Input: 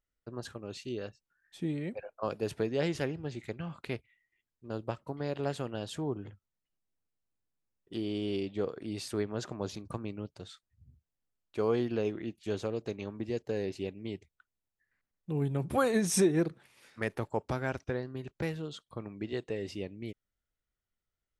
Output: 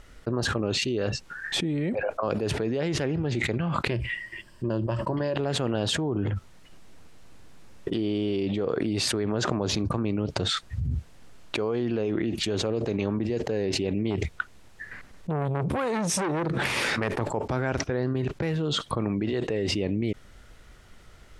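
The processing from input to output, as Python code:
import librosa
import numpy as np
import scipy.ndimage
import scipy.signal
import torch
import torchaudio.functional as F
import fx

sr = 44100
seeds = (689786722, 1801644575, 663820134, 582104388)

y = fx.ripple_eq(x, sr, per_octave=1.3, db=10, at=(3.9, 5.36))
y = fx.transformer_sat(y, sr, knee_hz=1300.0, at=(14.1, 17.21))
y = scipy.signal.sosfilt(scipy.signal.butter(2, 9900.0, 'lowpass', fs=sr, output='sos'), y)
y = fx.high_shelf(y, sr, hz=4200.0, db=-8.0)
y = fx.env_flatten(y, sr, amount_pct=100)
y = F.gain(torch.from_numpy(y), -1.0).numpy()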